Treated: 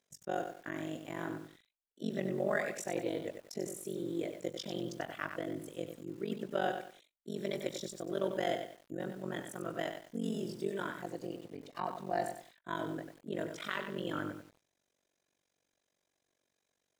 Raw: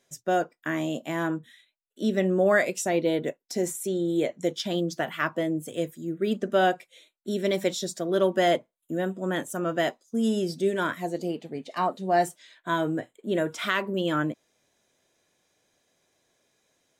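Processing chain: AM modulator 47 Hz, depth 100%; bit-crushed delay 95 ms, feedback 35%, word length 8-bit, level -7 dB; trim -8 dB

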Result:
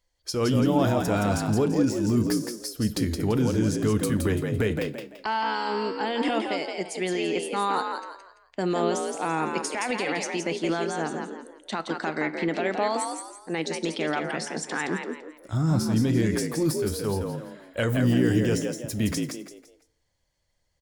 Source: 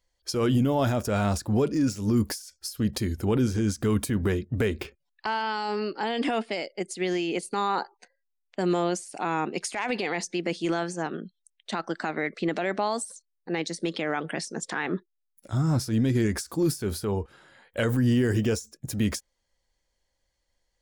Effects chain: frequency-shifting echo 169 ms, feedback 33%, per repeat +60 Hz, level -5 dB; FDN reverb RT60 0.67 s, low-frequency decay 1.05×, high-frequency decay 0.8×, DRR 14.5 dB

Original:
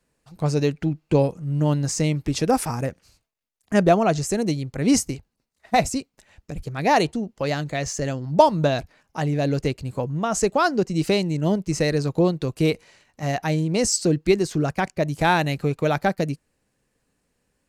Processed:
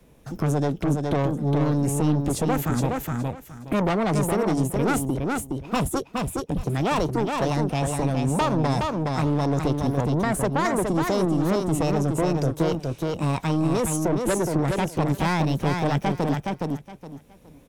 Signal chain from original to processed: bass shelf 440 Hz +11.5 dB; in parallel at 0 dB: peak limiter -12.5 dBFS, peak gain reduction 14 dB; on the sum: saturation -11 dBFS, distortion -10 dB; formant shift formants +5 st; on a send: feedback delay 417 ms, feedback 15%, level -4.5 dB; on the sum: three bands compressed up and down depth 40%; trim -8.5 dB

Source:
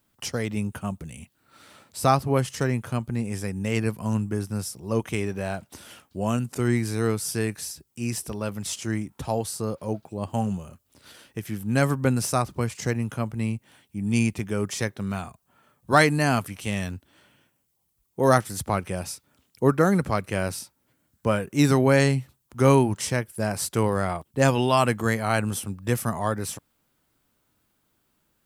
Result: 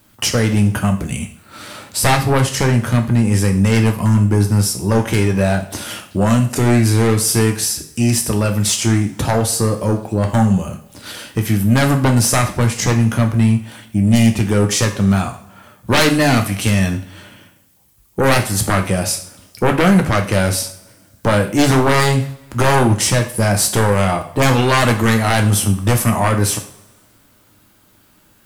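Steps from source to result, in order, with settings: in parallel at +2.5 dB: compression, threshold -32 dBFS, peak gain reduction 18.5 dB; on the sum: sine folder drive 14 dB, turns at -0.5 dBFS; two-slope reverb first 0.44 s, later 1.5 s, from -20 dB, DRR 4 dB; trim -9 dB

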